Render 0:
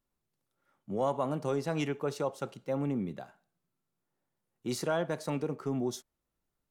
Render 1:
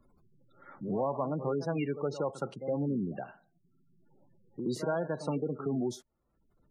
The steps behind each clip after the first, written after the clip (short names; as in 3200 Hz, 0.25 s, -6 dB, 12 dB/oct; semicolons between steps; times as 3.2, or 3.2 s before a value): pre-echo 69 ms -13 dB; spectral gate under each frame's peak -20 dB strong; three-band squash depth 70%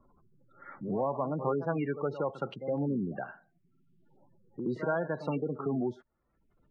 LFO low-pass saw up 0.72 Hz 990–3800 Hz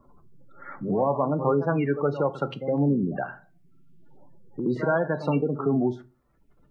shoebox room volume 130 m³, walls furnished, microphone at 0.35 m; gain +7 dB